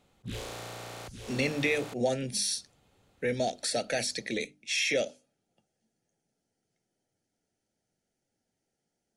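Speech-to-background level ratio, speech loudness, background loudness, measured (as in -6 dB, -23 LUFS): 12.0 dB, -30.5 LUFS, -42.5 LUFS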